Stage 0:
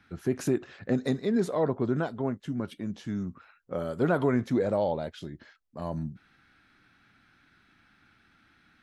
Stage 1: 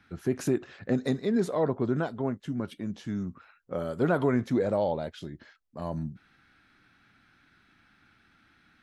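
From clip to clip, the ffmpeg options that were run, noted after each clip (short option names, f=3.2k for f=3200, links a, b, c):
-af anull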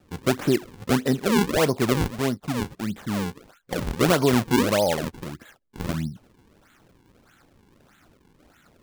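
-af "acrusher=samples=40:mix=1:aa=0.000001:lfo=1:lforange=64:lforate=1.6,volume=5.5dB"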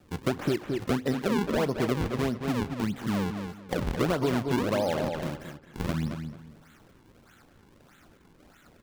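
-filter_complex "[0:a]asplit=2[a][b];[b]adelay=219,lowpass=f=3.7k:p=1,volume=-8.5dB,asplit=2[c][d];[d]adelay=219,lowpass=f=3.7k:p=1,volume=0.25,asplit=2[e][f];[f]adelay=219,lowpass=f=3.7k:p=1,volume=0.25[g];[c][e][g]amix=inputs=3:normalize=0[h];[a][h]amix=inputs=2:normalize=0,acrossover=split=1400|5000[i][j][k];[i]acompressor=threshold=-24dB:ratio=4[l];[j]acompressor=threshold=-39dB:ratio=4[m];[k]acompressor=threshold=-48dB:ratio=4[n];[l][m][n]amix=inputs=3:normalize=0"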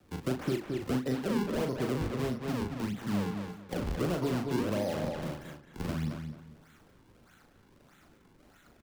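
-filter_complex "[0:a]acrossover=split=200|480|4800[a][b][c][d];[c]asoftclip=type=tanh:threshold=-31dB[e];[a][b][e][d]amix=inputs=4:normalize=0,asplit=2[f][g];[g]adelay=39,volume=-5.5dB[h];[f][h]amix=inputs=2:normalize=0,volume=-4.5dB"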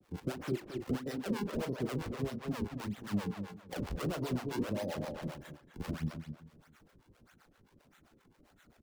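-filter_complex "[0:a]acrossover=split=520[a][b];[a]aeval=exprs='val(0)*(1-1/2+1/2*cos(2*PI*7.6*n/s))':c=same[c];[b]aeval=exprs='val(0)*(1-1/2-1/2*cos(2*PI*7.6*n/s))':c=same[d];[c][d]amix=inputs=2:normalize=0"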